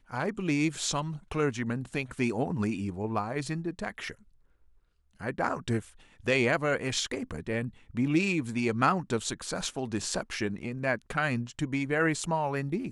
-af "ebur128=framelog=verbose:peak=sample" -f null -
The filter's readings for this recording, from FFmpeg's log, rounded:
Integrated loudness:
  I:         -30.5 LUFS
  Threshold: -40.7 LUFS
Loudness range:
  LRA:         5.7 LU
  Threshold: -51.1 LUFS
  LRA low:   -34.7 LUFS
  LRA high:  -29.0 LUFS
Sample peak:
  Peak:      -11.7 dBFS